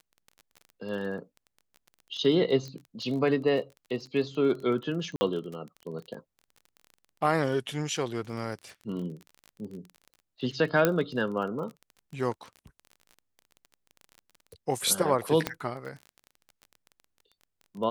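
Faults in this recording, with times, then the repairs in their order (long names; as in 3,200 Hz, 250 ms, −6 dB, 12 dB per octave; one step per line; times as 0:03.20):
surface crackle 26 per second −37 dBFS
0:02.68: click −28 dBFS
0:05.16–0:05.21: drop-out 50 ms
0:10.85: click −8 dBFS
0:15.47: click −12 dBFS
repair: click removal
repair the gap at 0:05.16, 50 ms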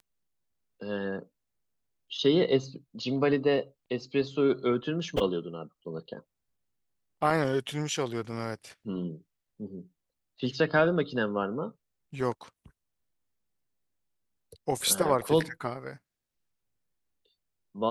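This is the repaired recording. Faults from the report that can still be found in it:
none of them is left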